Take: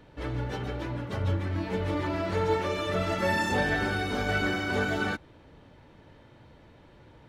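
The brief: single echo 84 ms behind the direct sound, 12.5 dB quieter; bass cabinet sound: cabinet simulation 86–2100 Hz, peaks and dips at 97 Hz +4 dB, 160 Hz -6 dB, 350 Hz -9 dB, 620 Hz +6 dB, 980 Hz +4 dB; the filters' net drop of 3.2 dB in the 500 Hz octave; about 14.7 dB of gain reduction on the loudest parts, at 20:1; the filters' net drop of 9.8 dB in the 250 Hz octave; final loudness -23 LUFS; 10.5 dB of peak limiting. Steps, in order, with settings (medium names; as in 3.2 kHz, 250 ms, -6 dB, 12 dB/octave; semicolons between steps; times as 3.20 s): peaking EQ 250 Hz -8 dB; peaking EQ 500 Hz -4.5 dB; compression 20:1, threshold -39 dBFS; peak limiter -41 dBFS; cabinet simulation 86–2100 Hz, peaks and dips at 97 Hz +4 dB, 160 Hz -6 dB, 350 Hz -9 dB, 620 Hz +6 dB, 980 Hz +4 dB; delay 84 ms -12.5 dB; trim +26.5 dB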